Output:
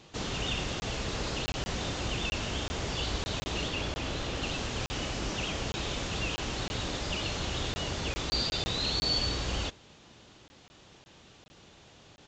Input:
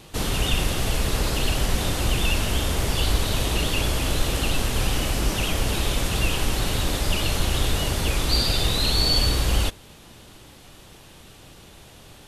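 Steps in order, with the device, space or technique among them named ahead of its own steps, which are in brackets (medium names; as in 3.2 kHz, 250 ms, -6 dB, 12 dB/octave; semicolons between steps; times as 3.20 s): call with lost packets (high-pass 100 Hz 6 dB/octave; resampled via 16 kHz; lost packets of 20 ms random); 3.68–4.43 s: treble shelf 8.5 kHz -10.5 dB; trim -7 dB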